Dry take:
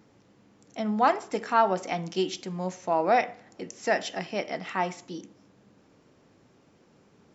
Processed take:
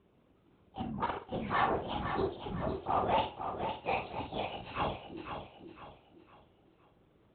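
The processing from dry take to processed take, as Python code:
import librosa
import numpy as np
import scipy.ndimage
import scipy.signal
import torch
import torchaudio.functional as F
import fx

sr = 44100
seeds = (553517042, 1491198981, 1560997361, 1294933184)

y = fx.partial_stretch(x, sr, pct=116)
y = 10.0 ** (-19.5 / 20.0) * np.tanh(y / 10.0 ** (-19.5 / 20.0))
y = fx.lpc_vocoder(y, sr, seeds[0], excitation='whisper', order=16)
y = scipy.signal.sosfilt(scipy.signal.butter(2, 63.0, 'highpass', fs=sr, output='sos'), y)
y = fx.peak_eq(y, sr, hz=1800.0, db=-6.0, octaves=0.42)
y = fx.doubler(y, sr, ms=50.0, db=-6.5)
y = fx.echo_feedback(y, sr, ms=509, feedback_pct=36, wet_db=-7.5)
y = fx.level_steps(y, sr, step_db=9, at=(0.81, 1.31), fade=0.02)
y = fx.band_widen(y, sr, depth_pct=40, at=(4.48, 5.17))
y = y * librosa.db_to_amplitude(-3.0)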